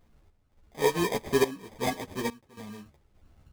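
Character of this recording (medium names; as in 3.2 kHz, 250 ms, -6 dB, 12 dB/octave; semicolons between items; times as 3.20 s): random-step tremolo 3.5 Hz, depth 95%; aliases and images of a low sample rate 1.4 kHz, jitter 0%; a shimmering, thickened sound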